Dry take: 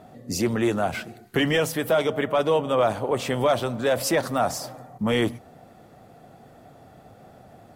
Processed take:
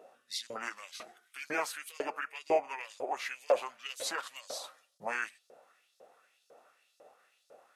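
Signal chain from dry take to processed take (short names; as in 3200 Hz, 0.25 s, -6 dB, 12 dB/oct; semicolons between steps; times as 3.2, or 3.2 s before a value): formant shift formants -4 st; LFO high-pass saw up 2 Hz 490–5300 Hz; gain -9 dB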